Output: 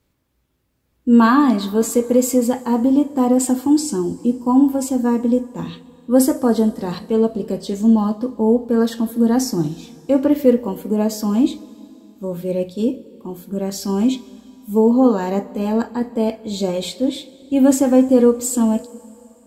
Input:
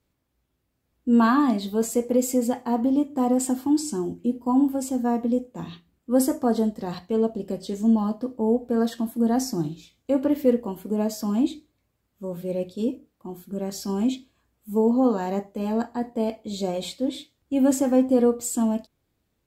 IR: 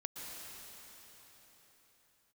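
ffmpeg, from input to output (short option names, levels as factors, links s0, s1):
-filter_complex "[0:a]bandreject=f=710:w=12,asplit=2[s0][s1];[1:a]atrim=start_sample=2205,asetrate=66150,aresample=44100,adelay=46[s2];[s1][s2]afir=irnorm=-1:irlink=0,volume=0.211[s3];[s0][s3]amix=inputs=2:normalize=0,volume=2.11"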